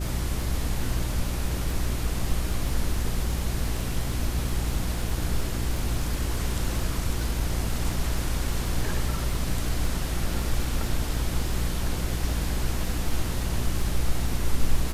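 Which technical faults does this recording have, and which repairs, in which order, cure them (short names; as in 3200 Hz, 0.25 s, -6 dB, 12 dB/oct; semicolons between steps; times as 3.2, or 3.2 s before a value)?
crackle 25/s -31 dBFS
hum 60 Hz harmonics 6 -30 dBFS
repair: de-click; de-hum 60 Hz, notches 6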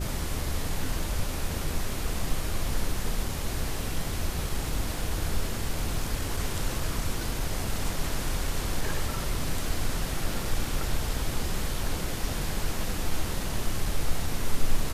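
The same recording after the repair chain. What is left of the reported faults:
none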